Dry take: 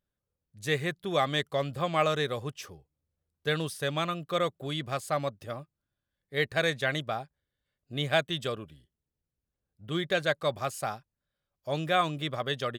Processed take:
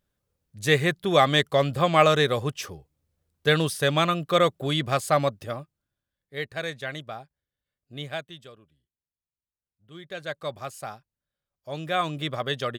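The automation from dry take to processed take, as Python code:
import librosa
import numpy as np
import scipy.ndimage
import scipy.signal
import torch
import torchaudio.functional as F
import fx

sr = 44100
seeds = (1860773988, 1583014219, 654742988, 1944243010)

y = fx.gain(x, sr, db=fx.line((5.22, 8.0), (6.47, -4.5), (8.02, -4.5), (8.52, -15.0), (9.88, -15.0), (10.39, -3.5), (11.7, -3.5), (12.2, 3.0)))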